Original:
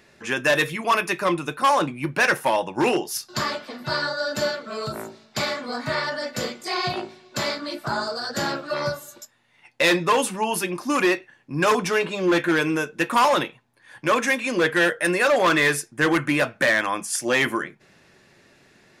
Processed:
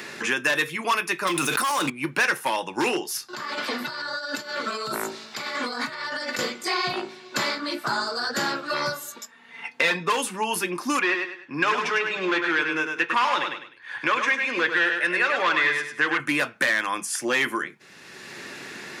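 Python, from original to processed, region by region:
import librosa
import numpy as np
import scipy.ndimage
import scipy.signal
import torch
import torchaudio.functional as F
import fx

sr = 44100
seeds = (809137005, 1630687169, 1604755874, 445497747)

y = fx.chain(x, sr, fx.pre_emphasis(coefficient=0.8),
    fx.leveller(passes=3),
    fx.env_flatten(amount_pct=100), at=(1.27, 1.9))
y = fx.chain(y, sr, fx.low_shelf(hz=170.0, db=-7.5),
    fx.over_compress(threshold_db=-36.0, ratio=-1.0), at=(3.33, 6.39))
y = fx.chain(y, sr, fx.lowpass(hz=3400.0, slope=6),
    fx.comb(ms=4.4, depth=0.69), at=(9.12, 10.1))
y = fx.chain(y, sr, fx.lowpass(hz=2300.0, slope=12),
    fx.tilt_eq(slope=3.0),
    fx.echo_feedback(ms=101, feedback_pct=26, wet_db=-6), at=(10.99, 16.2))
y = fx.highpass(y, sr, hz=370.0, slope=6)
y = fx.peak_eq(y, sr, hz=630.0, db=-7.5, octaves=0.67)
y = fx.band_squash(y, sr, depth_pct=70)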